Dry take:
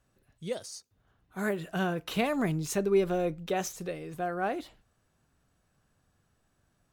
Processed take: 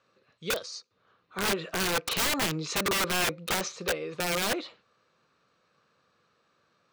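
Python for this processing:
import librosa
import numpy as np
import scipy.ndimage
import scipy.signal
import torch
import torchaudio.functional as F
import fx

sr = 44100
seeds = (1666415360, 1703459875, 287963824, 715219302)

y = fx.cabinet(x, sr, low_hz=220.0, low_slope=12, high_hz=6000.0, hz=(270.0, 500.0, 730.0, 1200.0, 2400.0, 4100.0), db=(-5, 8, -5, 10, 6, 8))
y = (np.mod(10.0 ** (25.0 / 20.0) * y + 1.0, 2.0) - 1.0) / 10.0 ** (25.0 / 20.0)
y = F.gain(torch.from_numpy(y), 3.5).numpy()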